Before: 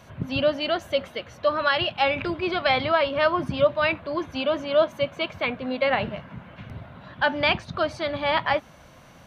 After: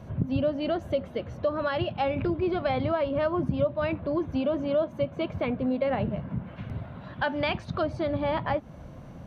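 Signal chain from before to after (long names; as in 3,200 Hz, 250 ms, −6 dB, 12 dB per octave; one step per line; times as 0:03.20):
tilt shelving filter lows +10 dB, about 800 Hz, from 0:06.46 lows +4 dB, from 0:07.81 lows +10 dB
downward compressor 2.5 to 1, threshold −26 dBFS, peak gain reduction 10 dB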